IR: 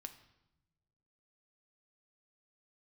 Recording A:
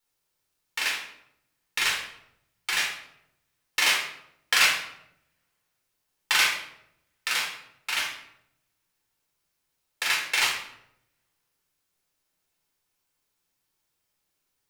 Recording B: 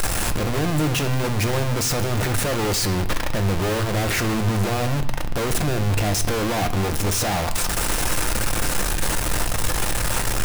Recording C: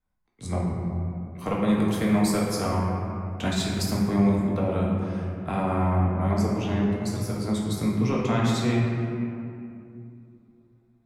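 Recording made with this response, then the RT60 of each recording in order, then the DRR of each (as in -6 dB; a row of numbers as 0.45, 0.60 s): B; 0.80, 1.1, 2.6 s; -2.5, 6.5, -4.5 dB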